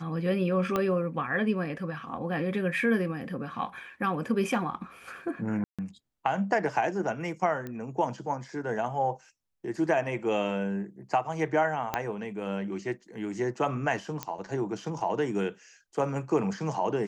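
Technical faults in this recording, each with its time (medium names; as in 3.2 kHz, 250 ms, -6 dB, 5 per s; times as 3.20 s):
0.76 s: pop -14 dBFS
5.64–5.79 s: dropout 146 ms
7.67 s: pop -24 dBFS
11.94 s: pop -13 dBFS
14.23 s: pop -15 dBFS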